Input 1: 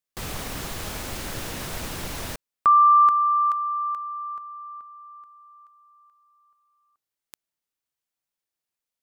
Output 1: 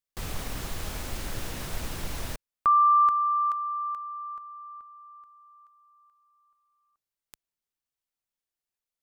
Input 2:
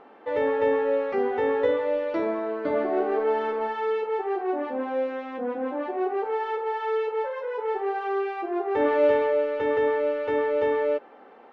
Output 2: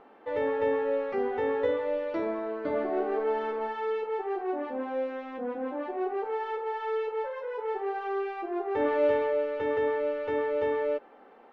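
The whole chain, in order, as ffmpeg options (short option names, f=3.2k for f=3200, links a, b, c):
-af "lowshelf=f=67:g=10,volume=-4.5dB"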